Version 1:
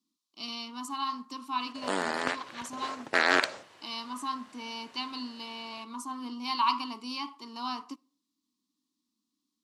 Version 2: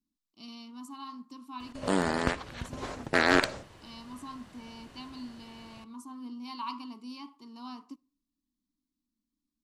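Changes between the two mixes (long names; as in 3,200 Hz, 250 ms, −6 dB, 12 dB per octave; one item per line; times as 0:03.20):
speech −11.0 dB
master: remove meter weighting curve A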